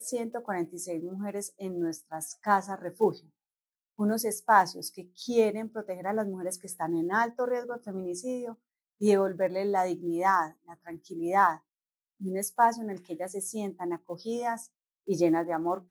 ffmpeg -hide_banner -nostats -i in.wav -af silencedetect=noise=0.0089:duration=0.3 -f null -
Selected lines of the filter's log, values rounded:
silence_start: 3.18
silence_end: 3.99 | silence_duration: 0.81
silence_start: 8.53
silence_end: 9.01 | silence_duration: 0.48
silence_start: 11.56
silence_end: 12.21 | silence_duration: 0.65
silence_start: 14.65
silence_end: 15.08 | silence_duration: 0.42